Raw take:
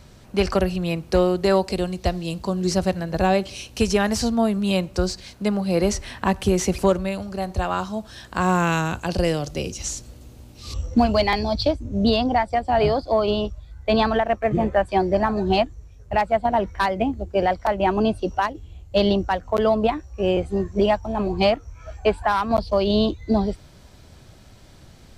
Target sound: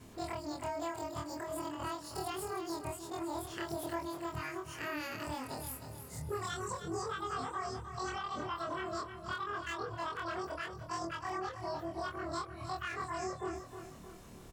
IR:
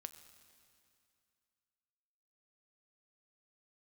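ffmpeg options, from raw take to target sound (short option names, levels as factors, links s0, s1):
-af "afftfilt=real='re':imag='-im':win_size=4096:overlap=0.75,acompressor=threshold=0.01:ratio=2.5,asetrate=76440,aresample=44100,aecho=1:1:312|624|936|1248|1560:0.335|0.151|0.0678|0.0305|0.0137,volume=0.75"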